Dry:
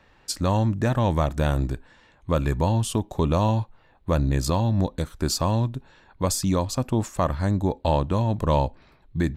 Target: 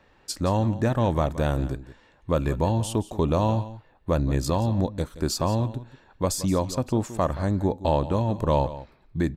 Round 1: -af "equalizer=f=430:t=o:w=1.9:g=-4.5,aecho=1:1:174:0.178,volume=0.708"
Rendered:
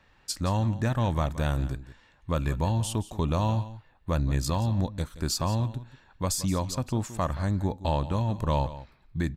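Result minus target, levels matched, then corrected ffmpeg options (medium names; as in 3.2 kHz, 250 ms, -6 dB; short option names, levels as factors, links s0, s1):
500 Hz band -4.5 dB
-af "equalizer=f=430:t=o:w=1.9:g=4,aecho=1:1:174:0.178,volume=0.708"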